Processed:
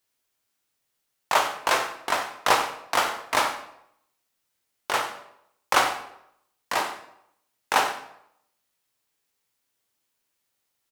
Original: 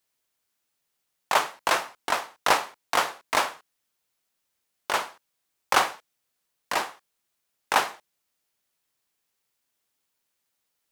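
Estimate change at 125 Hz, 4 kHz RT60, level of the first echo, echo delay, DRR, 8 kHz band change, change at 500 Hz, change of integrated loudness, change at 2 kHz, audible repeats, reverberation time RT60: +2.0 dB, 0.55 s, -14.5 dB, 91 ms, 4.5 dB, +1.0 dB, +1.5 dB, +1.0 dB, +1.0 dB, 1, 0.75 s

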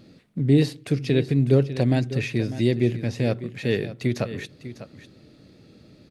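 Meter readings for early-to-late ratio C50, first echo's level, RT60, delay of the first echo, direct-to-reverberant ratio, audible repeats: no reverb, -13.5 dB, no reverb, 599 ms, no reverb, 1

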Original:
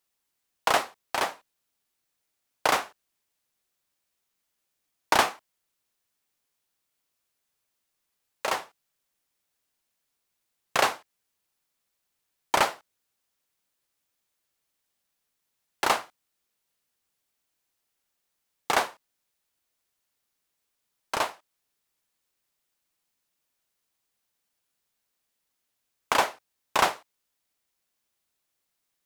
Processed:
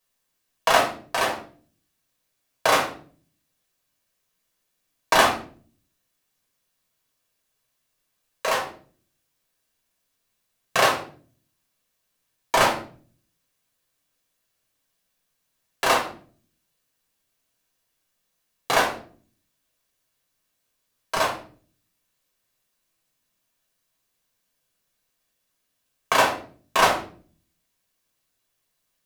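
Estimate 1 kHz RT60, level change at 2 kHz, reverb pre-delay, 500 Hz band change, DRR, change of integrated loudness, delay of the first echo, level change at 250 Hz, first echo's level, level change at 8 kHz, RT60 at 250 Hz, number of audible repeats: 0.40 s, +5.5 dB, 3 ms, +7.0 dB, -1.5 dB, +4.5 dB, no echo, +6.0 dB, no echo, +4.5 dB, 0.70 s, no echo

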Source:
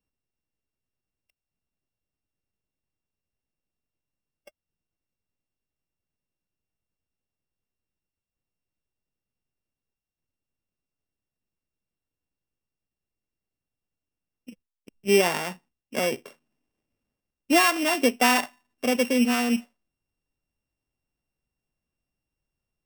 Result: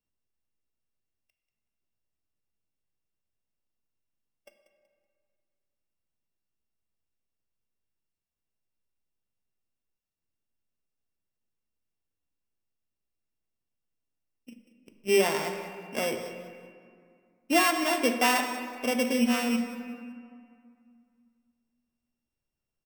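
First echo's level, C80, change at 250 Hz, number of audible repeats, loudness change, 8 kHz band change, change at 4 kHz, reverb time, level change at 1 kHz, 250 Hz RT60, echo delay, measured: -14.5 dB, 7.5 dB, -3.0 dB, 2, -3.5 dB, -3.0 dB, -3.5 dB, 2.1 s, -2.5 dB, 2.7 s, 188 ms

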